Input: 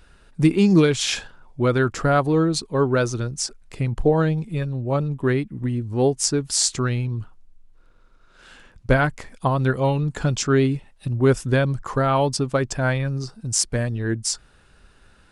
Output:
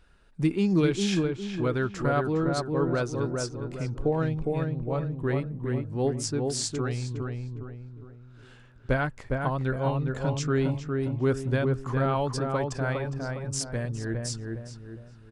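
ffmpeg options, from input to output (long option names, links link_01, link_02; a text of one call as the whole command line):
ffmpeg -i in.wav -filter_complex "[0:a]highshelf=frequency=6600:gain=-6,asplit=2[link_01][link_02];[link_02]adelay=409,lowpass=frequency=1500:poles=1,volume=-3dB,asplit=2[link_03][link_04];[link_04]adelay=409,lowpass=frequency=1500:poles=1,volume=0.44,asplit=2[link_05][link_06];[link_06]adelay=409,lowpass=frequency=1500:poles=1,volume=0.44,asplit=2[link_07][link_08];[link_08]adelay=409,lowpass=frequency=1500:poles=1,volume=0.44,asplit=2[link_09][link_10];[link_10]adelay=409,lowpass=frequency=1500:poles=1,volume=0.44,asplit=2[link_11][link_12];[link_12]adelay=409,lowpass=frequency=1500:poles=1,volume=0.44[link_13];[link_03][link_05][link_07][link_09][link_11][link_13]amix=inputs=6:normalize=0[link_14];[link_01][link_14]amix=inputs=2:normalize=0,volume=-8dB" out.wav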